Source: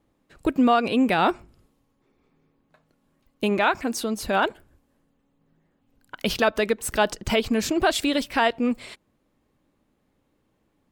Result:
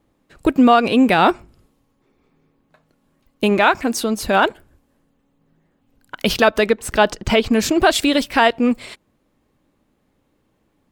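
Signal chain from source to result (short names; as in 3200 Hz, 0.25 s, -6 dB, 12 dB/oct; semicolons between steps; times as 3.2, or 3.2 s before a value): 6.67–7.53 high shelf 7900 Hz -10 dB; in parallel at -10 dB: crossover distortion -39.5 dBFS; on the sum: gain +4.5 dB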